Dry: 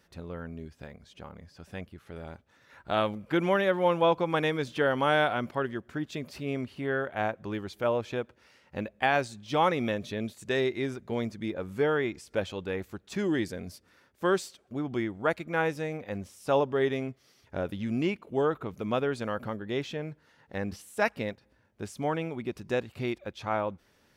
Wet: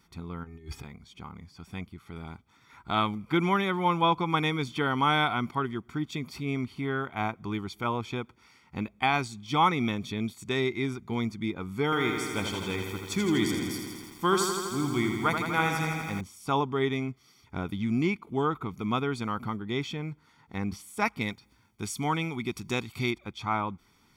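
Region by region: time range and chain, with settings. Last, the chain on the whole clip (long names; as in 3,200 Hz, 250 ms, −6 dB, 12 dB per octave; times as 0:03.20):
0:00.43–0:00.83: comb filter 2.4 ms, depth 82% + compressor whose output falls as the input rises −47 dBFS, ratio −0.5 + steady tone 1,800 Hz −63 dBFS
0:11.84–0:16.21: high-shelf EQ 4,200 Hz +9.5 dB + feedback echo at a low word length 82 ms, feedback 80%, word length 9 bits, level −6 dB
0:21.21–0:23.11: high-shelf EQ 2,400 Hz +9.5 dB + noise gate with hold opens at −56 dBFS, closes at −62 dBFS
whole clip: parametric band 75 Hz −4 dB 0.77 octaves; comb filter 0.9 ms, depth 82%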